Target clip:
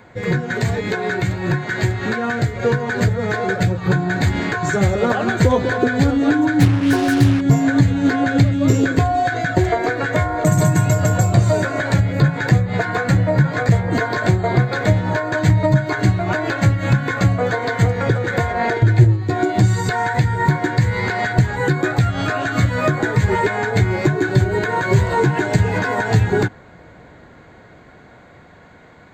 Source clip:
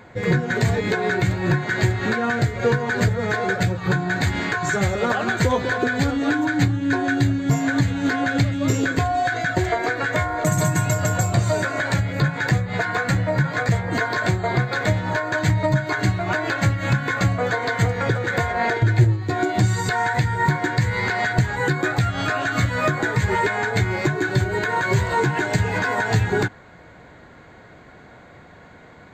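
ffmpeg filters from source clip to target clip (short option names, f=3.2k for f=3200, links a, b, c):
-filter_complex "[0:a]acrossover=split=710|2500[a][b][c];[a]dynaudnorm=f=780:g=9:m=8dB[d];[d][b][c]amix=inputs=3:normalize=0,asettb=1/sr,asplit=3[e][f][g];[e]atrim=end=6.604[h];[f]atrim=start=6.6:end=7.41,asetpts=PTS-STARTPTS,afade=t=in:d=0.004:c=qsin,afade=t=out:st=0.806:d=0.004:c=qsin,acrusher=bits=3:mix=0:aa=0.5[i];[g]atrim=start=7.406[j];[h][i]acrossfade=d=0.004:c1=hsin:c2=qsin[k];[k][j]acrossfade=d=0.004:c1=qsin:c2=hsin"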